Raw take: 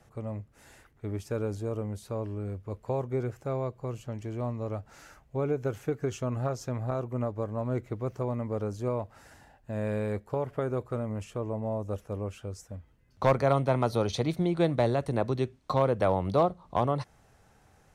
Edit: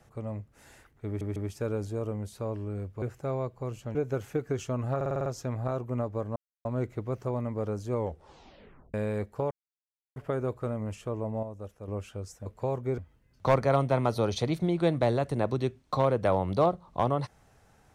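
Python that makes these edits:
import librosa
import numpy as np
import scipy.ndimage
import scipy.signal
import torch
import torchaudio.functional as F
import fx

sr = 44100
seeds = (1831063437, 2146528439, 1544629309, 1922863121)

y = fx.edit(x, sr, fx.stutter(start_s=1.06, slice_s=0.15, count=3),
    fx.move(start_s=2.72, length_s=0.52, to_s=12.75),
    fx.cut(start_s=4.17, length_s=1.31),
    fx.stutter(start_s=6.49, slice_s=0.05, count=7),
    fx.insert_silence(at_s=7.59, length_s=0.29),
    fx.tape_stop(start_s=8.86, length_s=1.02),
    fx.insert_silence(at_s=10.45, length_s=0.65),
    fx.clip_gain(start_s=11.72, length_s=0.45, db=-7.5), tone=tone)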